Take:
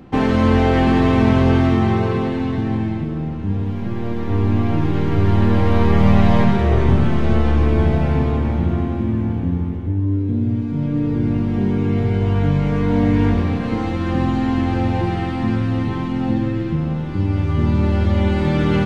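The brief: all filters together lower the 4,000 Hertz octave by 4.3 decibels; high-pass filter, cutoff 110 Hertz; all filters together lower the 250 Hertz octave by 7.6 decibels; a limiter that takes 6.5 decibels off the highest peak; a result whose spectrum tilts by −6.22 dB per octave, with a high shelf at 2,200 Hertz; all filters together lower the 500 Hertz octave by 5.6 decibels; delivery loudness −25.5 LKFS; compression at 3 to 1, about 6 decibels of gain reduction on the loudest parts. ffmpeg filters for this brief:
ffmpeg -i in.wav -af "highpass=110,equalizer=frequency=250:width_type=o:gain=-8.5,equalizer=frequency=500:width_type=o:gain=-4,highshelf=frequency=2200:gain=-3,equalizer=frequency=4000:width_type=o:gain=-3,acompressor=threshold=-24dB:ratio=3,volume=4dB,alimiter=limit=-16.5dB:level=0:latency=1" out.wav

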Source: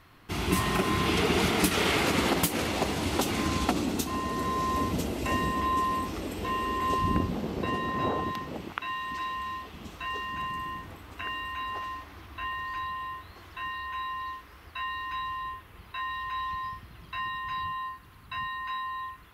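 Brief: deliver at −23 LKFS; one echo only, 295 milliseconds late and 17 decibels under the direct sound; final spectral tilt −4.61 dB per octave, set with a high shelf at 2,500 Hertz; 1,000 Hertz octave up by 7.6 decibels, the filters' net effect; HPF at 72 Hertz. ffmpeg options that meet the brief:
ffmpeg -i in.wav -af "highpass=72,equalizer=frequency=1000:width_type=o:gain=8.5,highshelf=frequency=2500:gain=-3.5,aecho=1:1:295:0.141,volume=3dB" out.wav

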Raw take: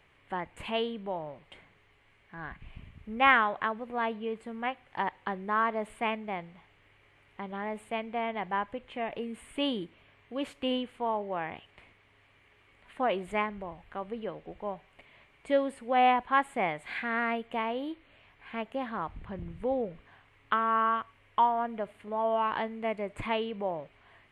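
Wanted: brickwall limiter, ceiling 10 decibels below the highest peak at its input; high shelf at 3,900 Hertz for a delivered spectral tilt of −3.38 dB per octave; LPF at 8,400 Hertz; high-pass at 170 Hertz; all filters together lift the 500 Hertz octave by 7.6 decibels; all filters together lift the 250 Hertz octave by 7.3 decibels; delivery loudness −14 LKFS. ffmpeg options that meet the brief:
ffmpeg -i in.wav -af "highpass=170,lowpass=8400,equalizer=frequency=250:width_type=o:gain=7.5,equalizer=frequency=500:width_type=o:gain=7.5,highshelf=frequency=3900:gain=5.5,volume=15dB,alimiter=limit=-0.5dB:level=0:latency=1" out.wav

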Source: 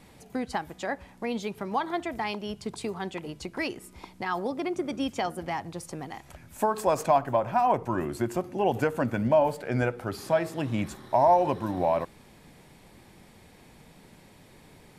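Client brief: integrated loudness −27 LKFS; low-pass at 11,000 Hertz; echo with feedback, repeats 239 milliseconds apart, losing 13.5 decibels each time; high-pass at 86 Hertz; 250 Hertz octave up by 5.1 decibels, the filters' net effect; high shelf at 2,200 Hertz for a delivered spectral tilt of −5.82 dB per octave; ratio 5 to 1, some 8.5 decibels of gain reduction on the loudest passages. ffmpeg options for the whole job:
ffmpeg -i in.wav -af "highpass=86,lowpass=11000,equalizer=frequency=250:width_type=o:gain=6.5,highshelf=frequency=2200:gain=-3,acompressor=threshold=-26dB:ratio=5,aecho=1:1:239|478:0.211|0.0444,volume=5dB" out.wav

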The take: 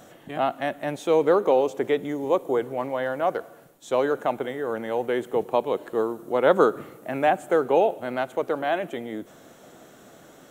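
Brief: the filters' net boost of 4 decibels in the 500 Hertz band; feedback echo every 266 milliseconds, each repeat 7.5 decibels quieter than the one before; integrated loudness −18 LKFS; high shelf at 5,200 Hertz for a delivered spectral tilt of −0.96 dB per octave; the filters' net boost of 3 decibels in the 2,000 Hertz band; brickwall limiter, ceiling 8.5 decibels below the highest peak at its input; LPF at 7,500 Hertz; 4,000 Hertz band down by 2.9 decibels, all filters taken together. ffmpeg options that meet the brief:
ffmpeg -i in.wav -af "lowpass=7500,equalizer=frequency=500:width_type=o:gain=4.5,equalizer=frequency=2000:width_type=o:gain=5.5,equalizer=frequency=4000:width_type=o:gain=-3.5,highshelf=frequency=5200:gain=-8.5,alimiter=limit=-11dB:level=0:latency=1,aecho=1:1:266|532|798|1064|1330:0.422|0.177|0.0744|0.0312|0.0131,volume=4.5dB" out.wav

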